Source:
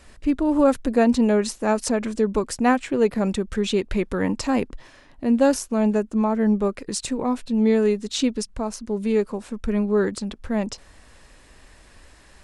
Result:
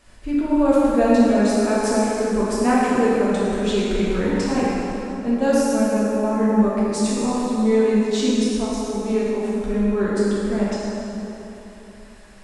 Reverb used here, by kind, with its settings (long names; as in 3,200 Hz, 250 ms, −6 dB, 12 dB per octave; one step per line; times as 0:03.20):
dense smooth reverb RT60 3.4 s, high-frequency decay 0.65×, DRR −8 dB
level −6 dB